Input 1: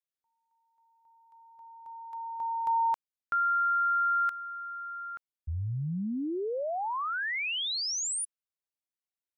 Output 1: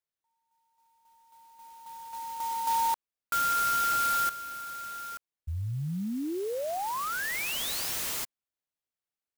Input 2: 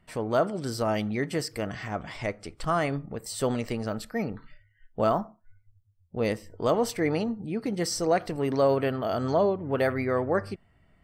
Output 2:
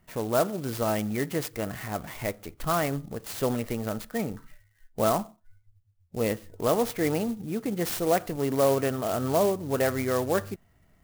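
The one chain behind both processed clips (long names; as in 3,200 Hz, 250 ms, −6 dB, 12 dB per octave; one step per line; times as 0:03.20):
converter with an unsteady clock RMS 0.051 ms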